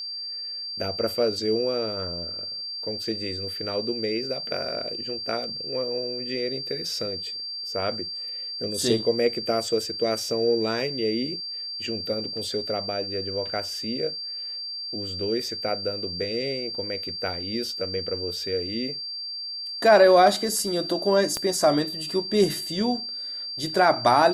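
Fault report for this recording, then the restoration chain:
whine 4.7 kHz -31 dBFS
21.37 s: pop -13 dBFS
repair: de-click; band-stop 4.7 kHz, Q 30

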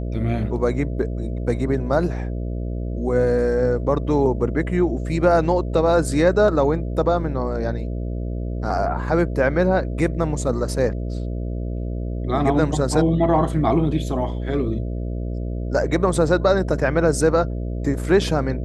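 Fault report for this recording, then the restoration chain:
buzz 60 Hz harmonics 11 -26 dBFS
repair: de-hum 60 Hz, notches 11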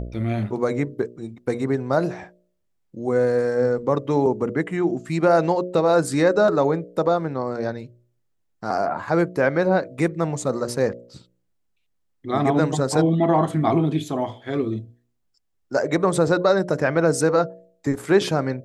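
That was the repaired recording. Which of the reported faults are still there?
nothing left

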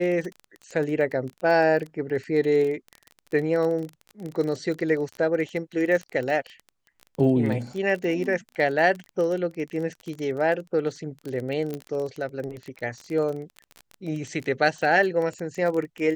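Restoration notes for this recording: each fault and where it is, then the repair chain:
crackle 24 per s -29 dBFS
11.74 s: pop -19 dBFS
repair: de-click

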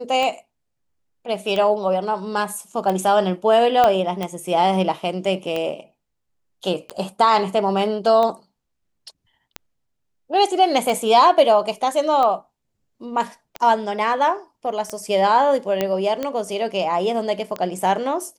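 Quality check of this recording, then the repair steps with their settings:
tick 45 rpm -12 dBFS
3.84 s: pop -5 dBFS
15.81 s: pop -7 dBFS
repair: de-click

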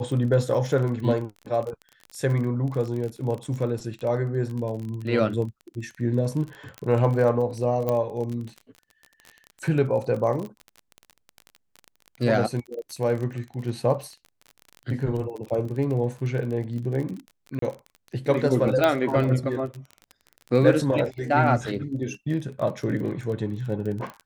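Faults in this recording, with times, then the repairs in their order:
crackle 31 per s -31 dBFS
6.78 s: pop -21 dBFS
7.89 s: pop -13 dBFS
17.59–17.62 s: dropout 33 ms
18.84 s: pop -8 dBFS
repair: de-click; interpolate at 17.59 s, 33 ms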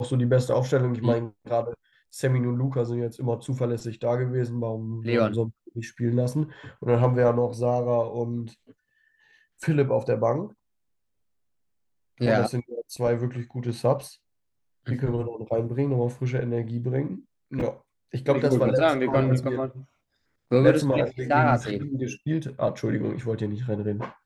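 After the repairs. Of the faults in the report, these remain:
nothing left

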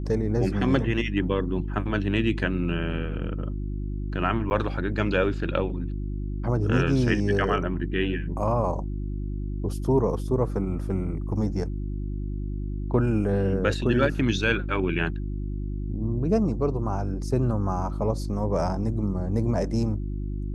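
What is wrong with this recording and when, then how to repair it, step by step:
hum 50 Hz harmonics 7 -30 dBFS
4.50–4.51 s: dropout 9.9 ms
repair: de-hum 50 Hz, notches 7; interpolate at 4.50 s, 9.9 ms

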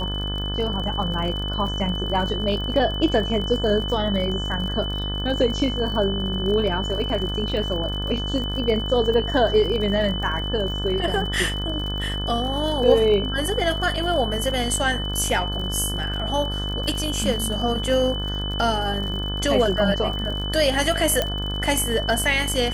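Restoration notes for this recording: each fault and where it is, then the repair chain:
buzz 50 Hz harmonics 35 -28 dBFS
crackle 48 per s -30 dBFS
whine 3 kHz -29 dBFS
21.22 s: pop -7 dBFS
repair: de-click; band-stop 3 kHz, Q 30; de-hum 50 Hz, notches 35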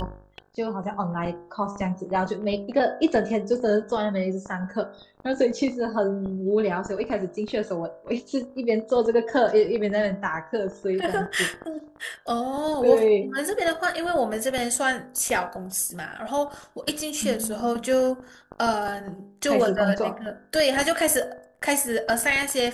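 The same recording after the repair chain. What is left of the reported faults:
21.22 s: pop

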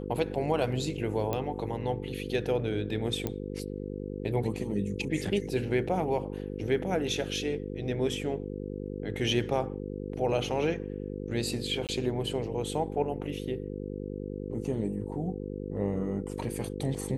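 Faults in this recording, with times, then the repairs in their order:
buzz 50 Hz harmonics 10 -37 dBFS
1.33 s: pop -17 dBFS
3.27 s: pop -16 dBFS
11.87–11.89 s: dropout 18 ms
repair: de-click; de-hum 50 Hz, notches 10; interpolate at 11.87 s, 18 ms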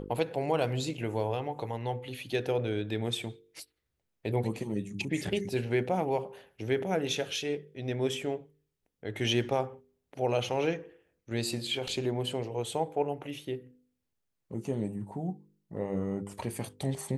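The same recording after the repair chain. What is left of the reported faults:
3.27 s: pop

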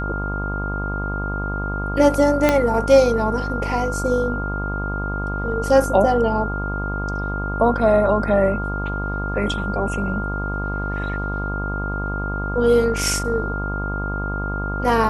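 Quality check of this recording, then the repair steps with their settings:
buzz 50 Hz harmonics 25 -26 dBFS
whine 1.4 kHz -27 dBFS
2.49 s: pop -2 dBFS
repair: de-click; band-stop 1.4 kHz, Q 30; de-hum 50 Hz, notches 25

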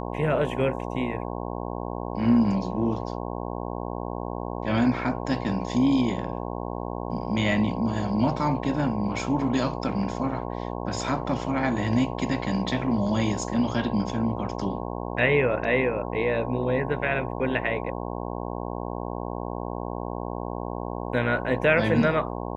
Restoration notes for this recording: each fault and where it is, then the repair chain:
buzz 60 Hz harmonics 18 -32 dBFS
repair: de-hum 60 Hz, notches 18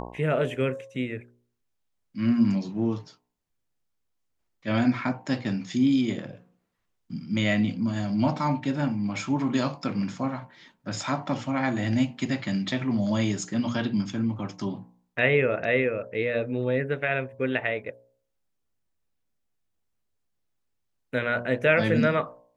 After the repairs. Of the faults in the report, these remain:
nothing left

